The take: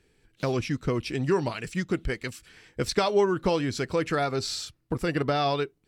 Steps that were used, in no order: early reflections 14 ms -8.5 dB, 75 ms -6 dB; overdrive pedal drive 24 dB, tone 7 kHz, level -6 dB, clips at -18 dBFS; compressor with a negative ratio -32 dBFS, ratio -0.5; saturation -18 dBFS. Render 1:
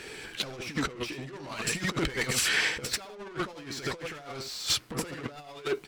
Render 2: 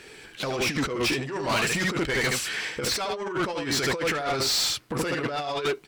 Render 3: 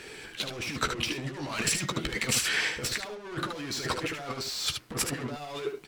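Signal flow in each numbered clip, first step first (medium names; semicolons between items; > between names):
saturation > overdrive pedal > early reflections > compressor with a negative ratio; saturation > early reflections > compressor with a negative ratio > overdrive pedal; overdrive pedal > saturation > compressor with a negative ratio > early reflections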